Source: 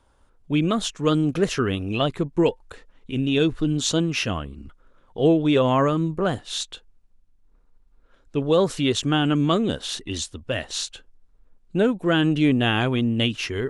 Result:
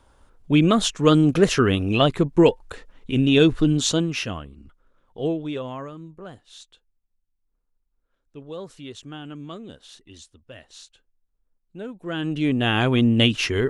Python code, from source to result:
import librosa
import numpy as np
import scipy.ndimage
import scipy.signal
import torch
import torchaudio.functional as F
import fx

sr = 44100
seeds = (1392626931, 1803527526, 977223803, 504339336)

y = fx.gain(x, sr, db=fx.line((3.62, 4.5), (4.51, -6.5), (5.26, -6.5), (5.91, -16.5), (11.76, -16.5), (12.33, -5.0), (13.03, 4.5)))